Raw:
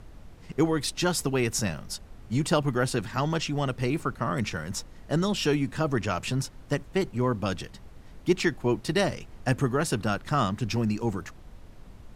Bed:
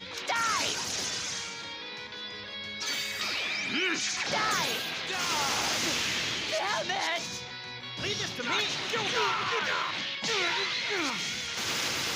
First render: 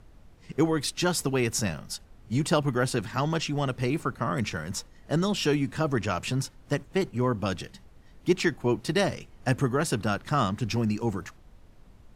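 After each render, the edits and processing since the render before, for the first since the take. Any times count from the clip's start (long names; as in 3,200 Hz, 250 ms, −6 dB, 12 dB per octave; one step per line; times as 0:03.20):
noise reduction from a noise print 6 dB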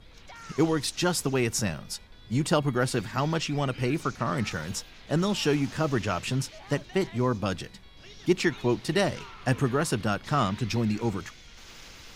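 mix in bed −17.5 dB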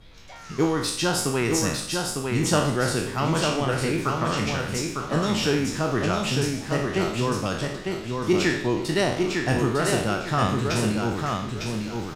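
peak hold with a decay on every bin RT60 0.64 s
repeating echo 903 ms, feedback 29%, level −4 dB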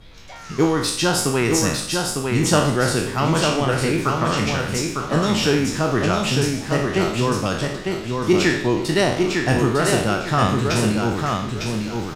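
level +4.5 dB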